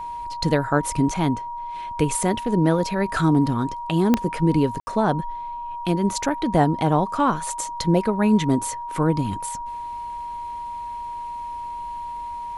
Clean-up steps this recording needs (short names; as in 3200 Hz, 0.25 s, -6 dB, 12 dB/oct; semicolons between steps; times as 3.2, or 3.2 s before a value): de-click; notch 950 Hz, Q 30; room tone fill 4.8–4.87